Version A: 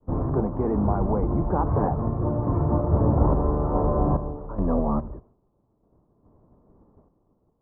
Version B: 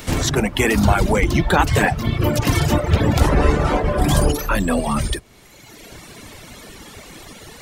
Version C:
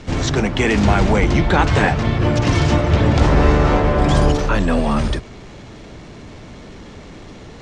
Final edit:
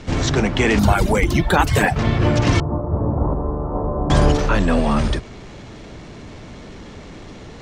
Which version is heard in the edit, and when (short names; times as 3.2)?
C
0.79–1.96 from B
2.6–4.1 from A